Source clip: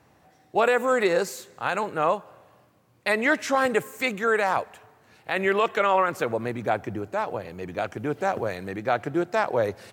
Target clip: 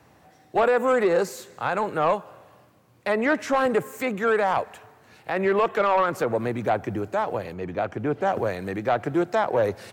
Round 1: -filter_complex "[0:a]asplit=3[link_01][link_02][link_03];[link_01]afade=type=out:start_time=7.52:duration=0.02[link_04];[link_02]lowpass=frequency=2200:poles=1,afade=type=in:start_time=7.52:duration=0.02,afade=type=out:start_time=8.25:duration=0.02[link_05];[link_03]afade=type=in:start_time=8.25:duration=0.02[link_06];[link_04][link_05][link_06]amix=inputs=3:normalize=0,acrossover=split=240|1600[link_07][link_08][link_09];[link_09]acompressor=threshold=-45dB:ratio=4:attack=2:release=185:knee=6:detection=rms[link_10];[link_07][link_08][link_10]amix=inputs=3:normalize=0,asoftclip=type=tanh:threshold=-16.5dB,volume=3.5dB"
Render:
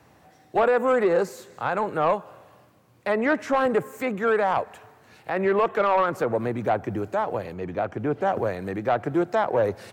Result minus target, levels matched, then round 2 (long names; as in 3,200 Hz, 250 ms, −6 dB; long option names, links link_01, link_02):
downward compressor: peak gain reduction +5.5 dB
-filter_complex "[0:a]asplit=3[link_01][link_02][link_03];[link_01]afade=type=out:start_time=7.52:duration=0.02[link_04];[link_02]lowpass=frequency=2200:poles=1,afade=type=in:start_time=7.52:duration=0.02,afade=type=out:start_time=8.25:duration=0.02[link_05];[link_03]afade=type=in:start_time=8.25:duration=0.02[link_06];[link_04][link_05][link_06]amix=inputs=3:normalize=0,acrossover=split=240|1600[link_07][link_08][link_09];[link_09]acompressor=threshold=-37.5dB:ratio=4:attack=2:release=185:knee=6:detection=rms[link_10];[link_07][link_08][link_10]amix=inputs=3:normalize=0,asoftclip=type=tanh:threshold=-16.5dB,volume=3.5dB"